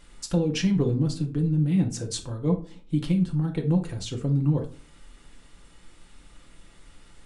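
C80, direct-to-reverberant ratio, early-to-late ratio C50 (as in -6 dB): 17.5 dB, 1.5 dB, 11.5 dB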